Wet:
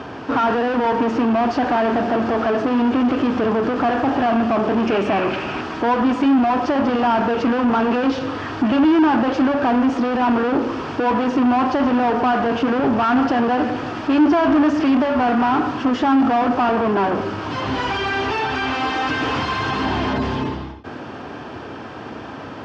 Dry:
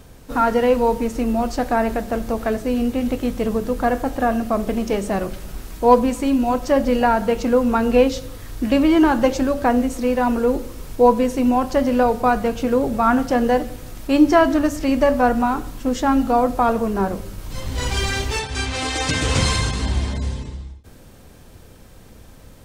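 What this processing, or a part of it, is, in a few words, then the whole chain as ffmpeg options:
overdrive pedal into a guitar cabinet: -filter_complex "[0:a]highpass=63,asplit=2[link_01][link_02];[link_02]highpass=frequency=720:poles=1,volume=38dB,asoftclip=type=tanh:threshold=-2dB[link_03];[link_01][link_03]amix=inputs=2:normalize=0,lowpass=frequency=1300:poles=1,volume=-6dB,highpass=86,equalizer=frequency=180:width_type=q:width=4:gain=-7,equalizer=frequency=290:width_type=q:width=4:gain=3,equalizer=frequency=520:width_type=q:width=4:gain=-9,equalizer=frequency=2100:width_type=q:width=4:gain=-7,equalizer=frequency=3900:width_type=q:width=4:gain=-9,lowpass=frequency=4500:width=0.5412,lowpass=frequency=4500:width=1.3066,asettb=1/sr,asplit=3[link_04][link_05][link_06];[link_04]atrim=end=4.864[link_07];[link_05]atrim=start=4.86:end=5.61,asetpts=PTS-STARTPTS,afade=type=in:duration=0.004:curve=qsin,afade=type=out:start_time=0.746:duration=0.004:curve=qsin,equalizer=frequency=2500:width_type=o:width=0.47:gain=9.5[link_08];[link_06]atrim=start=5.606[link_09];[link_07][link_08]acrossfade=duration=0.004:curve1=hsin:curve2=qsin[link_10];[link_10][link_09]acrossfade=duration=0.004:curve1=qsin:curve2=hsin,volume=-6dB"

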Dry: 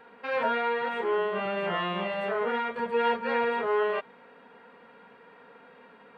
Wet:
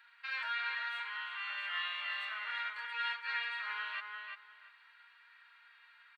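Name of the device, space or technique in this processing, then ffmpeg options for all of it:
headphones lying on a table: -filter_complex "[0:a]asettb=1/sr,asplit=3[link_01][link_02][link_03];[link_01]atrim=end=1.004[link_04];[link_02]atrim=start=1:end=1.5,asetpts=PTS-STARTPTS,afade=type=in:duration=0.004:curve=qsin,afade=type=out:start_time=0.496:duration=0.004:curve=qsin,highpass=frequency=830:width=0.5412,highpass=frequency=830:width=1.3066[link_05];[link_03]atrim=start=1.496[link_06];[link_04][link_05]acrossfade=duration=0.004:curve1=hsin:curve2=qsin[link_07];[link_07][link_06]acrossfade=duration=0.004:curve1=qsin:curve2=hsin,highpass=frequency=1500:width=0.5412,highpass=frequency=1500:width=1.3066,equalizer=frequency=4200:width_type=o:width=0.27:gain=8.5,asplit=2[link_08][link_09];[link_09]adelay=345,lowpass=frequency=3700:poles=1,volume=-4dB,asplit=2[link_10][link_11];[link_11]adelay=345,lowpass=frequency=3700:poles=1,volume=0.2,asplit=2[link_12][link_13];[link_13]adelay=345,lowpass=frequency=3700:poles=1,volume=0.2[link_14];[link_08][link_10][link_12][link_14]amix=inputs=4:normalize=0,volume=-2.5dB"

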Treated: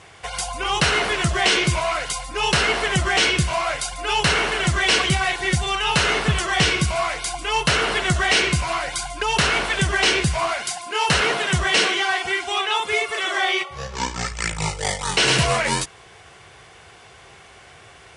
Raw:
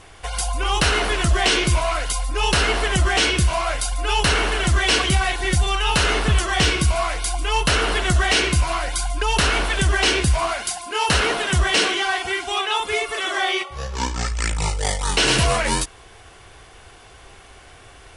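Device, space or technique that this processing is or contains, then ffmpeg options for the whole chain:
car door speaker: -af "highpass=96,equalizer=frequency=150:width_type=q:width=4:gain=5,equalizer=frequency=280:width_type=q:width=4:gain=-6,equalizer=frequency=2100:width_type=q:width=4:gain=3,lowpass=frequency=9500:width=0.5412,lowpass=frequency=9500:width=1.3066"

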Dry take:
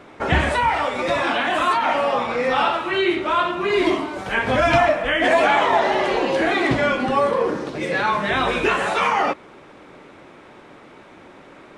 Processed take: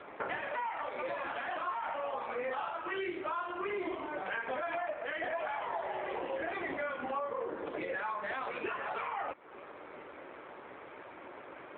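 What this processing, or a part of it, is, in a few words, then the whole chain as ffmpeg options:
voicemail: -af "highpass=380,lowpass=2700,acompressor=threshold=-33dB:ratio=8" -ar 8000 -c:a libopencore_amrnb -b:a 7400

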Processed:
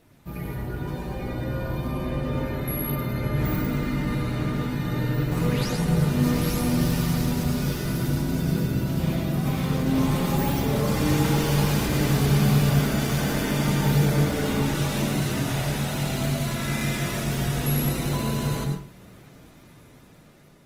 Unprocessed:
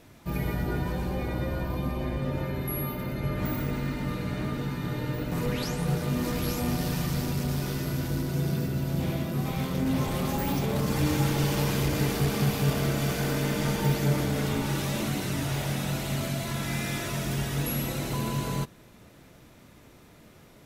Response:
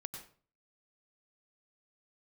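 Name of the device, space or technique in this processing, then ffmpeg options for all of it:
speakerphone in a meeting room: -filter_complex "[1:a]atrim=start_sample=2205[link_01];[0:a][link_01]afir=irnorm=-1:irlink=0,dynaudnorm=framelen=660:gausssize=5:maxgain=6dB" -ar 48000 -c:a libopus -b:a 24k

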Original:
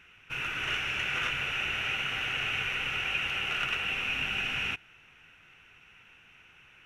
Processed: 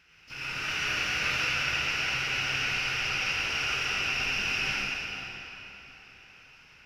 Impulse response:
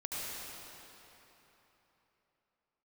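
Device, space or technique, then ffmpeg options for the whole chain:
shimmer-style reverb: -filter_complex "[0:a]asettb=1/sr,asplit=3[link_01][link_02][link_03];[link_01]atrim=end=0.644[link_04];[link_02]atrim=start=0.64:end=1.54,asetpts=PTS-STARTPTS,afade=type=in:duration=0.004:curve=qsin,afade=type=out:start_time=0.896:duration=0.004:curve=qsin,asplit=2[link_05][link_06];[link_06]adelay=26,volume=-6.5dB[link_07];[link_05][link_07]amix=inputs=2:normalize=0,atrim=end_sample=39690[link_08];[link_03]atrim=start=1.536[link_09];[link_04][link_08]acrossfade=duration=0.004:curve1=hsin:curve2=qsin[link_10];[link_10][link_09]acrossfade=duration=0.004:curve1=qsin:curve2=hsin,asplit=2[link_11][link_12];[link_12]asetrate=88200,aresample=44100,atempo=0.5,volume=-9dB[link_13];[link_11][link_13]amix=inputs=2:normalize=0[link_14];[1:a]atrim=start_sample=2205[link_15];[link_14][link_15]afir=irnorm=-1:irlink=0,volume=-1.5dB"

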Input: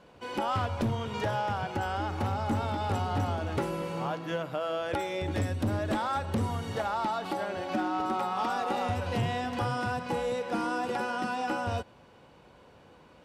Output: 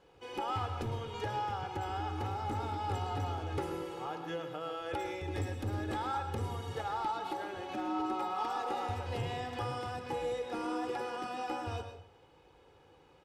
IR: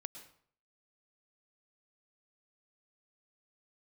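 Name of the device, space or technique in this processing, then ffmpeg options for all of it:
microphone above a desk: -filter_complex "[0:a]aecho=1:1:2.4:0.6[link_01];[1:a]atrim=start_sample=2205[link_02];[link_01][link_02]afir=irnorm=-1:irlink=0,volume=-3.5dB"

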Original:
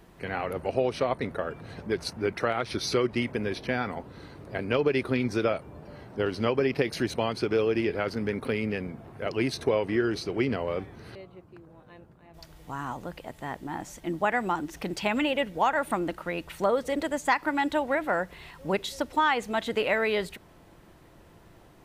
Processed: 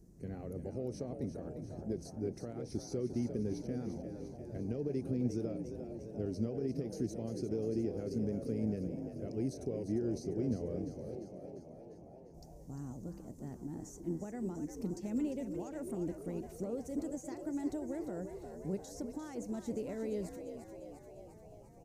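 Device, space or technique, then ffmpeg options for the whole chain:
over-bright horn tweeter: -filter_complex "[0:a]highshelf=frequency=4500:width_type=q:width=3:gain=12,alimiter=limit=-19dB:level=0:latency=1:release=102,firequalizer=gain_entry='entry(220,0);entry(970,-25);entry(2700,-21)':delay=0.05:min_phase=1,asplit=9[link_01][link_02][link_03][link_04][link_05][link_06][link_07][link_08][link_09];[link_02]adelay=349,afreqshift=52,volume=-9dB[link_10];[link_03]adelay=698,afreqshift=104,volume=-13dB[link_11];[link_04]adelay=1047,afreqshift=156,volume=-17dB[link_12];[link_05]adelay=1396,afreqshift=208,volume=-21dB[link_13];[link_06]adelay=1745,afreqshift=260,volume=-25.1dB[link_14];[link_07]adelay=2094,afreqshift=312,volume=-29.1dB[link_15];[link_08]adelay=2443,afreqshift=364,volume=-33.1dB[link_16];[link_09]adelay=2792,afreqshift=416,volume=-37.1dB[link_17];[link_01][link_10][link_11][link_12][link_13][link_14][link_15][link_16][link_17]amix=inputs=9:normalize=0,volume=-3dB"

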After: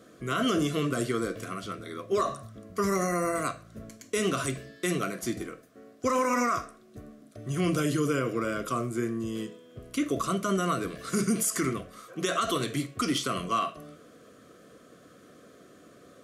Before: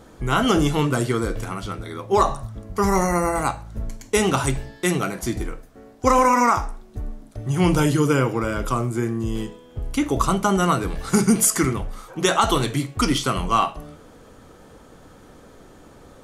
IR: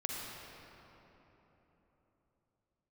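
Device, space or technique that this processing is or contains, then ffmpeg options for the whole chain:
PA system with an anti-feedback notch: -af "highpass=160,asuperstop=centerf=870:order=8:qfactor=3,alimiter=limit=-12.5dB:level=0:latency=1:release=51,volume=-5dB"

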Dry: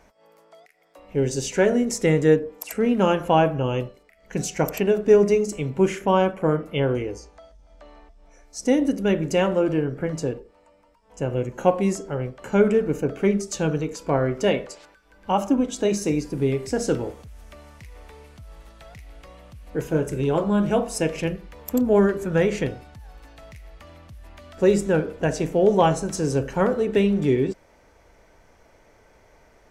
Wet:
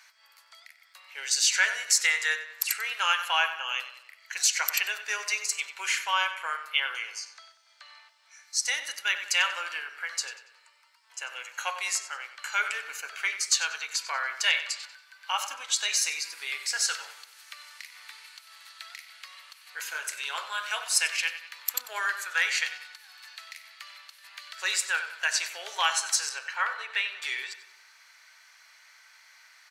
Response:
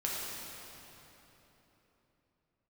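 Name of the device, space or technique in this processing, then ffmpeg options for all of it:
headphones lying on a table: -filter_complex "[0:a]asettb=1/sr,asplit=3[link_01][link_02][link_03];[link_01]atrim=end=26.294[link_04];[link_02]atrim=start=26.29:end=27.22,asetpts=PTS-STARTPTS,afade=type=in:duration=0.004:curve=qsin,afade=type=out:start_time=0.926:duration=0.004:curve=qsin,bass=frequency=250:gain=-10,treble=frequency=4000:gain=-13[link_05];[link_03]atrim=start=27.216[link_06];[link_04][link_05]acrossfade=duration=0.004:curve1=hsin:curve2=qsin[link_07];[link_07][link_06]acrossfade=duration=0.004:curve1=qsin:curve2=hsin,highpass=frequency=1400:width=0.5412,highpass=frequency=1400:width=1.3066,equalizer=frequency=4300:width_type=o:width=0.26:gain=10,asplit=2[link_08][link_09];[link_09]adelay=94,lowpass=frequency=4900:poles=1,volume=-11.5dB,asplit=2[link_10][link_11];[link_11]adelay=94,lowpass=frequency=4900:poles=1,volume=0.49,asplit=2[link_12][link_13];[link_13]adelay=94,lowpass=frequency=4900:poles=1,volume=0.49,asplit=2[link_14][link_15];[link_15]adelay=94,lowpass=frequency=4900:poles=1,volume=0.49,asplit=2[link_16][link_17];[link_17]adelay=94,lowpass=frequency=4900:poles=1,volume=0.49[link_18];[link_08][link_10][link_12][link_14][link_16][link_18]amix=inputs=6:normalize=0,volume=7dB"

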